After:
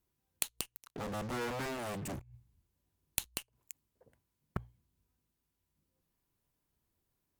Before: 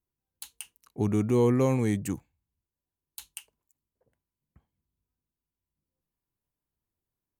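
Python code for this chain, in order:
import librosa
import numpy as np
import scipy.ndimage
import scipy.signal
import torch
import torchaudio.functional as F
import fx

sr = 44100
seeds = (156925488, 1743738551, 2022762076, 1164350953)

p1 = fx.cheby_harmonics(x, sr, harmonics=(4, 5, 7), levels_db=(-13, -26, -9), full_scale_db=-12.5)
p2 = fx.low_shelf(p1, sr, hz=250.0, db=8.0, at=(2.07, 3.31))
p3 = fx.fuzz(p2, sr, gain_db=47.0, gate_db=-51.0)
p4 = p2 + (p3 * librosa.db_to_amplitude(-7.0))
p5 = fx.hum_notches(p4, sr, base_hz=60, count=2)
p6 = fx.gate_flip(p5, sr, shuts_db=-21.0, range_db=-25)
y = p6 * librosa.db_to_amplitude(4.5)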